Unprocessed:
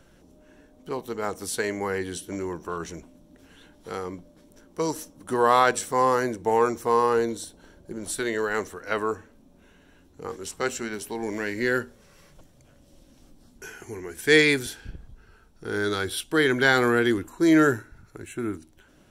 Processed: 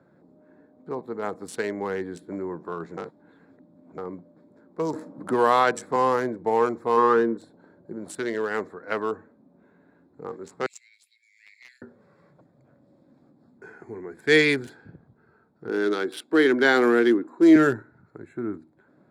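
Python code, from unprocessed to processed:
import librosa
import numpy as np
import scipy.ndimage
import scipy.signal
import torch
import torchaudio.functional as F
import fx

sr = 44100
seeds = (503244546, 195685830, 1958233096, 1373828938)

y = fx.band_squash(x, sr, depth_pct=40, at=(4.93, 5.96))
y = fx.cabinet(y, sr, low_hz=130.0, low_slope=12, high_hz=2100.0, hz=(130.0, 220.0, 380.0, 670.0, 1200.0, 1700.0), db=(5, 5, 8, -6, 8, 8), at=(6.96, 7.37), fade=0.02)
y = fx.steep_highpass(y, sr, hz=2200.0, slope=72, at=(10.66, 11.82))
y = fx.highpass_res(y, sr, hz=280.0, q=1.7, at=(15.69, 17.56))
y = fx.edit(y, sr, fx.reverse_span(start_s=2.97, length_s=1.01), tone=tone)
y = fx.wiener(y, sr, points=15)
y = scipy.signal.sosfilt(scipy.signal.butter(4, 120.0, 'highpass', fs=sr, output='sos'), y)
y = fx.high_shelf(y, sr, hz=8200.0, db=-10.0)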